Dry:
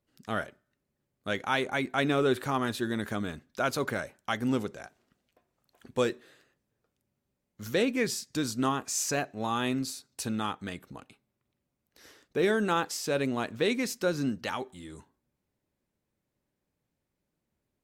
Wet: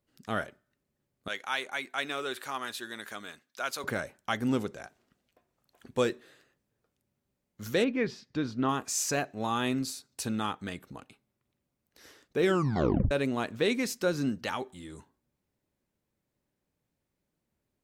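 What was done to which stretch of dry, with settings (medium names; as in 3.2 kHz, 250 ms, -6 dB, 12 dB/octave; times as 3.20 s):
1.28–3.84 s: high-pass 1.5 kHz 6 dB/octave
7.84–8.69 s: distance through air 260 m
12.44 s: tape stop 0.67 s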